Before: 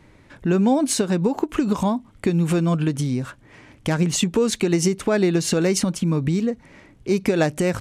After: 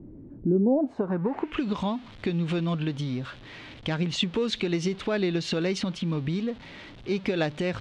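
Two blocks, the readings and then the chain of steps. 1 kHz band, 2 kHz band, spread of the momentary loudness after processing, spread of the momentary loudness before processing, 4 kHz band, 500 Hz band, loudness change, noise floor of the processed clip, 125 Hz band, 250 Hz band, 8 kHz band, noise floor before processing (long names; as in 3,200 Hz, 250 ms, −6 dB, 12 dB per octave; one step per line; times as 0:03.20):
−7.5 dB, −4.5 dB, 10 LU, 6 LU, −2.5 dB, −6.5 dB, −6.5 dB, −46 dBFS, −7.0 dB, −6.5 dB, −18.0 dB, −52 dBFS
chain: converter with a step at zero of −34.5 dBFS
low-pass filter sweep 300 Hz → 3,600 Hz, 0:00.50–0:01.64
level −8 dB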